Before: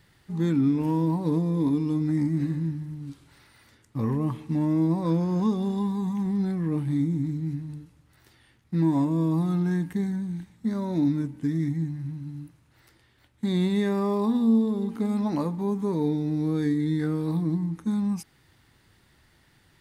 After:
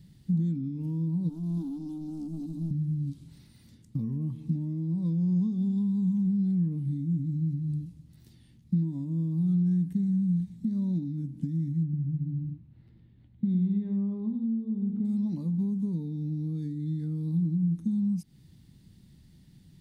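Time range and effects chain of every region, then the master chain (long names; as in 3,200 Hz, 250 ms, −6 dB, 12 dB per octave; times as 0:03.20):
0:01.29–0:02.71: gain into a clipping stage and back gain 25.5 dB + high-shelf EQ 4,000 Hz +6 dB + phaser with its sweep stopped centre 520 Hz, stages 6
0:11.83–0:15.05: high-frequency loss of the air 470 metres + single-tap delay 101 ms −7.5 dB
whole clip: downward compressor 8 to 1, threshold −37 dBFS; drawn EQ curve 110 Hz 0 dB, 180 Hz +9 dB, 400 Hz −11 dB, 1,400 Hz −23 dB, 4,000 Hz −8 dB; level +5.5 dB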